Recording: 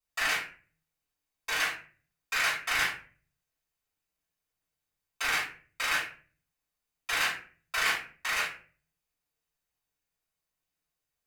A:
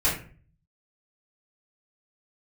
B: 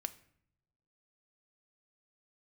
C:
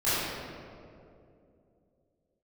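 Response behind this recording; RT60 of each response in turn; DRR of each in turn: A; 0.45 s, 0.70 s, 2.6 s; -10.5 dB, 10.0 dB, -15.5 dB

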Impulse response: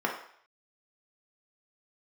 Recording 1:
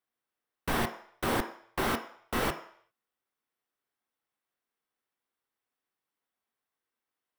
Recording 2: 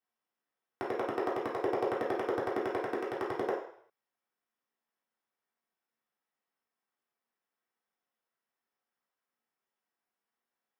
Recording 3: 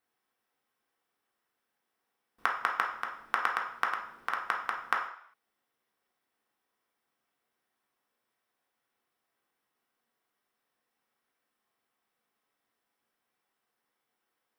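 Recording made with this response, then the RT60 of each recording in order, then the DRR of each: 3; 0.60 s, 0.60 s, 0.60 s; 5.5 dB, -7.5 dB, -1.0 dB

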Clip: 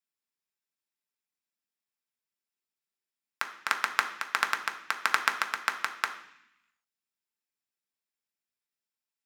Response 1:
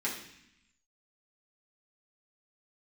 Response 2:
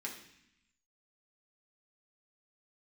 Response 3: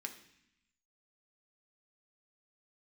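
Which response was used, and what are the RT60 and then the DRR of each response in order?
3; 0.70 s, 0.70 s, 0.70 s; -6.5 dB, -2.5 dB, 3.5 dB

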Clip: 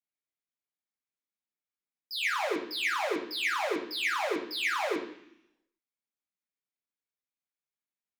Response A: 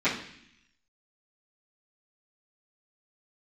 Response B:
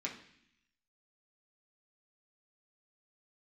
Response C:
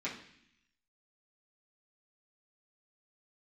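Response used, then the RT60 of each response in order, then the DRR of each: C; 0.65 s, 0.65 s, 0.65 s; -16.0 dB, -3.5 dB, -9.0 dB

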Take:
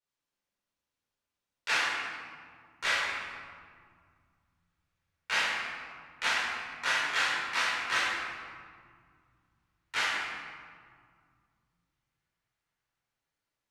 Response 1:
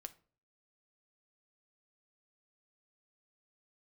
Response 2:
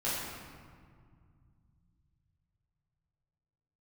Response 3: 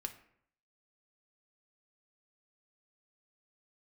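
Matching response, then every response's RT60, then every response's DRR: 2; 0.45 s, 2.0 s, 0.65 s; 9.0 dB, -9.5 dB, 5.5 dB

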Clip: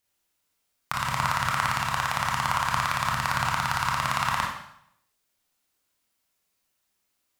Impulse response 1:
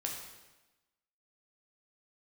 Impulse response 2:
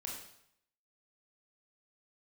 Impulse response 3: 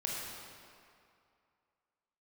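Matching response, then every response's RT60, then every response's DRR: 2; 1.1 s, 0.70 s, 2.4 s; -0.5 dB, -2.5 dB, -3.5 dB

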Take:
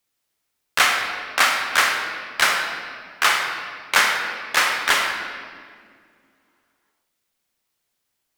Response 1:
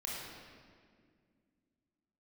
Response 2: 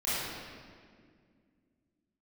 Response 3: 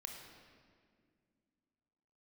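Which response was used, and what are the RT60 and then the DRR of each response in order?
3; 2.0 s, 2.0 s, 2.1 s; -5.0 dB, -12.5 dB, 2.0 dB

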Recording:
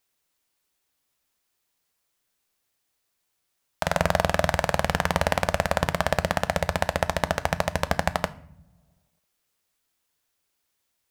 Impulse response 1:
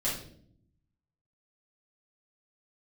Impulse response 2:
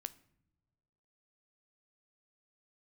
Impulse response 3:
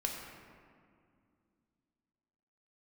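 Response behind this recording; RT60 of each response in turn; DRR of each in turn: 2; 0.60 s, no single decay rate, 2.3 s; -8.5 dB, 13.5 dB, 0.0 dB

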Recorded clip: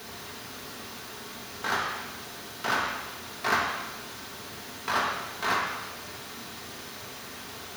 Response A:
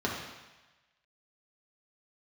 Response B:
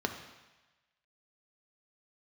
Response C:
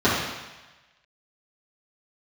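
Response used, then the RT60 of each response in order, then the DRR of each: A; 1.1 s, 1.1 s, 1.1 s; -3.5 dB, 4.5 dB, -12.5 dB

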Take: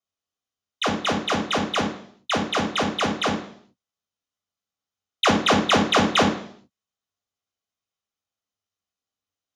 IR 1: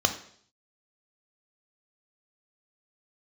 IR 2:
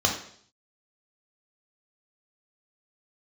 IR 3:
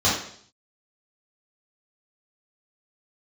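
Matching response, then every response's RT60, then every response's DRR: 2; 0.60 s, 0.60 s, 0.60 s; 6.5 dB, 0.5 dB, -9.0 dB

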